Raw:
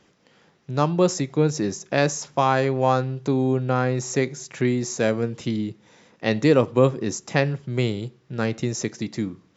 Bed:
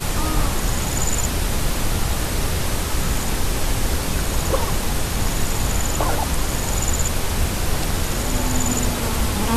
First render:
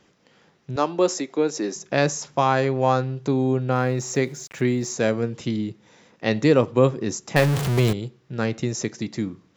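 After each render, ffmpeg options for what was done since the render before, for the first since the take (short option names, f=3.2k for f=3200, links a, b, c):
-filter_complex "[0:a]asettb=1/sr,asplit=3[a][b][c];[a]atrim=end=0.764[d];[b]atrim=start=0.76:end=1.76,asetpts=PTS-STARTPTS,afade=t=in:d=0.004:c=qsin,afade=t=out:st=0.996:d=0.004:c=qsin,highpass=f=250:w=0.5412,highpass=f=250:w=1.3066[e];[c]atrim=start=1.756[f];[d][e]acrossfade=d=0.004:c1=hsin:c2=qsin[g];[g][f]acrossfade=d=0.004:c1=qsin:c2=hsin,asplit=3[h][i][j];[h]afade=t=out:st=3.71:d=0.02[k];[i]aeval=exprs='val(0)*gte(abs(val(0)),0.00447)':c=same,afade=t=in:st=3.71:d=0.02,afade=t=out:st=4.93:d=0.02[l];[j]afade=t=in:st=4.93:d=0.02[m];[k][l][m]amix=inputs=3:normalize=0,asettb=1/sr,asplit=3[n][o][p];[n]atrim=end=7.364[q];[o]atrim=start=7.36:end=7.93,asetpts=PTS-STARTPTS,afade=t=in:d=0.004:c=qsin,afade=t=out:st=0.566:d=0.004:c=qsin,aeval=exprs='val(0)+0.5*0.106*sgn(val(0))':c=same[r];[p]atrim=start=7.926[s];[q][r]acrossfade=d=0.004:c1=hsin:c2=qsin[t];[t][s]acrossfade=d=0.004:c1=qsin:c2=hsin"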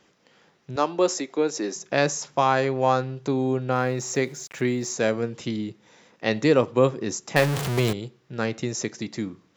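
-af "lowshelf=f=230:g=-6.5"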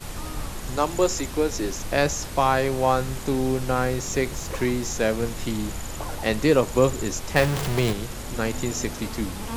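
-filter_complex "[1:a]volume=-12dB[a];[0:a][a]amix=inputs=2:normalize=0"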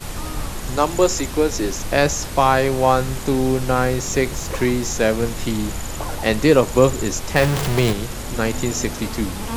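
-af "volume=5dB,alimiter=limit=-1dB:level=0:latency=1"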